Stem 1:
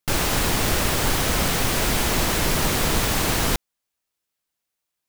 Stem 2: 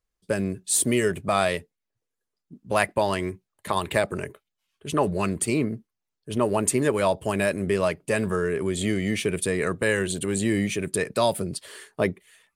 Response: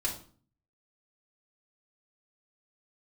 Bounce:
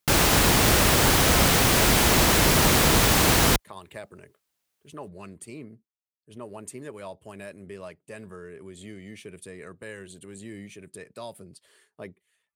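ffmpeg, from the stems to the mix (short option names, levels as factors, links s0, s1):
-filter_complex "[0:a]volume=1.41[s0];[1:a]volume=0.141[s1];[s0][s1]amix=inputs=2:normalize=0,highpass=40"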